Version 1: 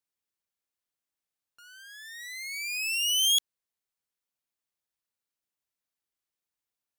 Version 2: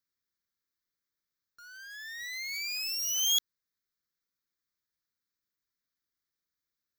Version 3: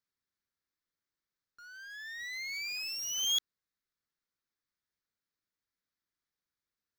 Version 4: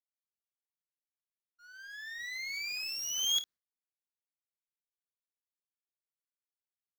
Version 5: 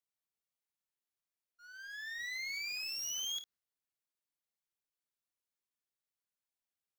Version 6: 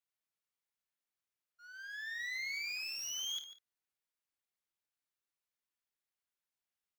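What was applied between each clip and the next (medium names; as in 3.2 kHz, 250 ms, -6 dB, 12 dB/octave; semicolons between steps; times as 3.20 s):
static phaser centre 2.8 kHz, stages 6; short-mantissa float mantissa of 2-bit; trim +3 dB
treble shelf 6.5 kHz -11 dB
expander -48 dBFS; on a send: early reflections 27 ms -13.5 dB, 54 ms -14.5 dB
compression 10:1, threshold -36 dBFS, peak gain reduction 10.5 dB
peaking EQ 1.8 kHz +4.5 dB 2.3 oct; echo from a far wall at 25 m, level -12 dB; trim -3.5 dB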